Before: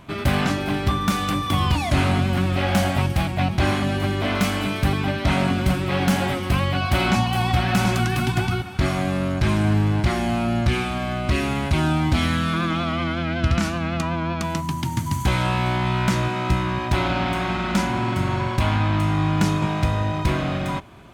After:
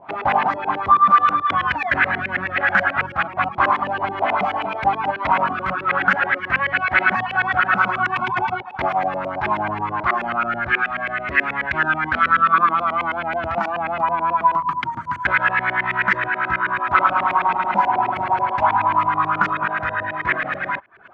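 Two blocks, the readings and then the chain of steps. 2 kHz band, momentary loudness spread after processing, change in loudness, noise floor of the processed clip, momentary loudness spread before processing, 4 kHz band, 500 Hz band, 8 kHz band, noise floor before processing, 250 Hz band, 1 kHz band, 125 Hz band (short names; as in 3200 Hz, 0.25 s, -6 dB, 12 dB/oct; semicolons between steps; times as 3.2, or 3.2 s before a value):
+9.0 dB, 7 LU, +2.5 dB, -33 dBFS, 4 LU, -7.0 dB, -0.5 dB, under -20 dB, -28 dBFS, -10.5 dB, +8.5 dB, -15.5 dB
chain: reverb removal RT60 0.54 s; LFO low-pass saw up 9.3 Hz 450–2400 Hz; LPF 4000 Hz 6 dB/oct; tilt +4 dB/oct; LFO bell 0.22 Hz 810–1800 Hz +15 dB; gain -2 dB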